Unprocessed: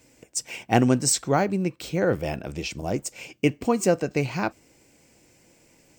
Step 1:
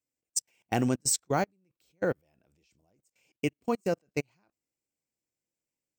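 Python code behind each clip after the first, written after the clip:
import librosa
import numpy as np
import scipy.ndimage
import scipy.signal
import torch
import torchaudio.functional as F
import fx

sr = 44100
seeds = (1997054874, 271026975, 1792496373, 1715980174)

y = fx.high_shelf(x, sr, hz=6700.0, db=9.0)
y = fx.level_steps(y, sr, step_db=22)
y = fx.upward_expand(y, sr, threshold_db=-37.0, expansion=2.5)
y = y * 10.0 ** (-2.0 / 20.0)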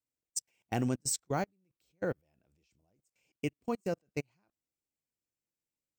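y = fx.low_shelf(x, sr, hz=140.0, db=6.0)
y = y * 10.0 ** (-6.0 / 20.0)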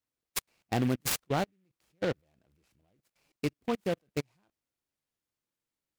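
y = fx.noise_mod_delay(x, sr, seeds[0], noise_hz=2000.0, depth_ms=0.059)
y = y * 10.0 ** (3.0 / 20.0)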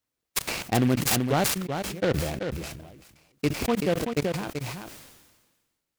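y = x + 10.0 ** (-7.0 / 20.0) * np.pad(x, (int(383 * sr / 1000.0), 0))[:len(x)]
y = fx.sustainer(y, sr, db_per_s=43.0)
y = y * 10.0 ** (5.5 / 20.0)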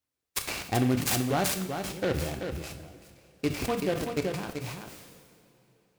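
y = fx.rev_double_slope(x, sr, seeds[1], early_s=0.6, late_s=3.8, knee_db=-18, drr_db=6.5)
y = y * 10.0 ** (-4.0 / 20.0)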